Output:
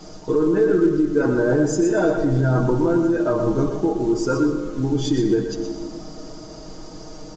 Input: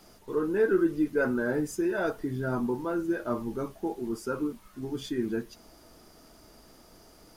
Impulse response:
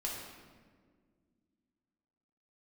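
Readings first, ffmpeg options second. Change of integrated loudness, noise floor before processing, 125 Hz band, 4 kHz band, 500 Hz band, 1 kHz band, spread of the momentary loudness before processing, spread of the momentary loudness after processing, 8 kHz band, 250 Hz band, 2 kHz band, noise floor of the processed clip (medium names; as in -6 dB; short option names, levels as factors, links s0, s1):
+10.0 dB, -56 dBFS, +16.0 dB, +11.0 dB, +9.5 dB, +8.5 dB, 10 LU, 20 LU, +11.5 dB, +10.5 dB, +4.0 dB, -38 dBFS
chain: -filter_complex "[0:a]equalizer=f=2200:w=0.67:g=-10,aecho=1:1:6.4:0.78,asplit=2[s0][s1];[s1]alimiter=limit=0.0631:level=0:latency=1:release=17,volume=1.19[s2];[s0][s2]amix=inputs=2:normalize=0,acompressor=threshold=0.0562:ratio=4,aecho=1:1:122|244|366:0.398|0.0637|0.0102,asplit=2[s3][s4];[1:a]atrim=start_sample=2205,adelay=117[s5];[s4][s5]afir=irnorm=-1:irlink=0,volume=0.299[s6];[s3][s6]amix=inputs=2:normalize=0,acontrast=72,volume=1.19" -ar 16000 -c:a pcm_mulaw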